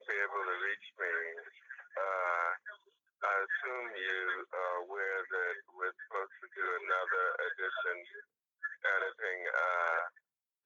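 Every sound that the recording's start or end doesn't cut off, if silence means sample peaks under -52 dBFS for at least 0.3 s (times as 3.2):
3.22–8.21
8.63–10.18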